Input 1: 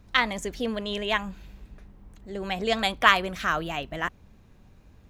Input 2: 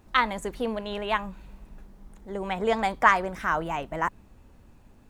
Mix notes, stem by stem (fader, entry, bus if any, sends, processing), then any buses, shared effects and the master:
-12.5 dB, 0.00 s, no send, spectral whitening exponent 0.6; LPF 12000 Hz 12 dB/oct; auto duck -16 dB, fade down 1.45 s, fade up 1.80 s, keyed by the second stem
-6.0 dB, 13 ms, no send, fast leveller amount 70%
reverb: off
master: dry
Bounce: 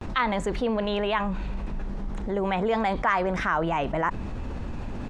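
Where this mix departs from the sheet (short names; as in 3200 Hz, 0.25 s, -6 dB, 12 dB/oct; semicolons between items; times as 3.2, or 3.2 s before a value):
stem 1 -12.5 dB -> -23.5 dB; master: extra air absorption 110 m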